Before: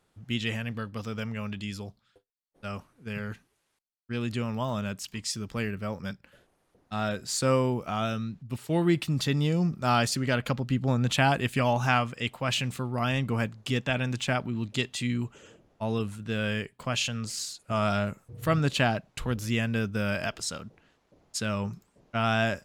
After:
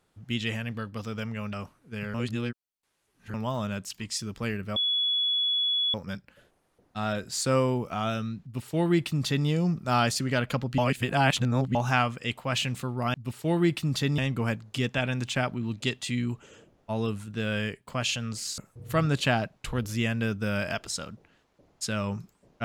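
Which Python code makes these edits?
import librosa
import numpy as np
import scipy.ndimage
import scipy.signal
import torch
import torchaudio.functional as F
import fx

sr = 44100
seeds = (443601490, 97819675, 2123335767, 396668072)

y = fx.edit(x, sr, fx.cut(start_s=1.53, length_s=1.14),
    fx.reverse_span(start_s=3.28, length_s=1.2),
    fx.insert_tone(at_s=5.9, length_s=1.18, hz=3390.0, db=-23.0),
    fx.duplicate(start_s=8.39, length_s=1.04, to_s=13.1),
    fx.reverse_span(start_s=10.74, length_s=0.97),
    fx.cut(start_s=17.5, length_s=0.61), tone=tone)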